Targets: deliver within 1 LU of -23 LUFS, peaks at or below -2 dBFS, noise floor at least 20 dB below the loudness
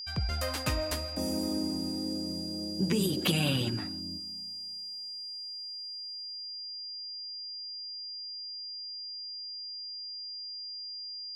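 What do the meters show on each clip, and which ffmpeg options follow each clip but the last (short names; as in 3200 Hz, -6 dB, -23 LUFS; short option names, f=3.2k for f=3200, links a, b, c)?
steady tone 4800 Hz; tone level -38 dBFS; loudness -34.0 LUFS; peak -14.5 dBFS; loudness target -23.0 LUFS
-> -af "bandreject=f=4.8k:w=30"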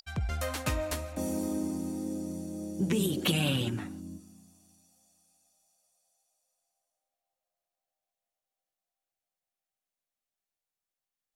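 steady tone none; loudness -32.0 LUFS; peak -14.0 dBFS; loudness target -23.0 LUFS
-> -af "volume=9dB"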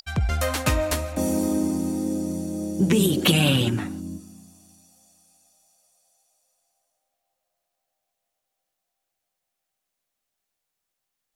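loudness -23.0 LUFS; peak -5.0 dBFS; noise floor -82 dBFS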